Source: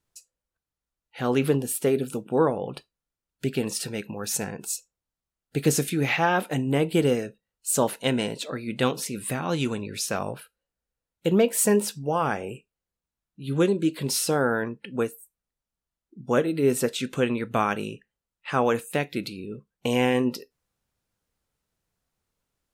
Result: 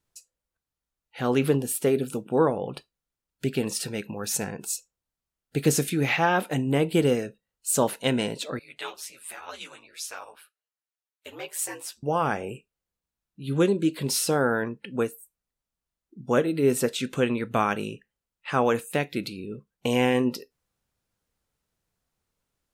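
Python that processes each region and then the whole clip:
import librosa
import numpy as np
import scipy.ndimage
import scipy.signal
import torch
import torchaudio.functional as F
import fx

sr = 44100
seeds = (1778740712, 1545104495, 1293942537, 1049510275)

y = fx.chain(x, sr, fx.highpass(hz=890.0, slope=12),
    fx.ring_mod(carrier_hz=80.0),
    fx.ensemble(), at=(8.59, 12.03))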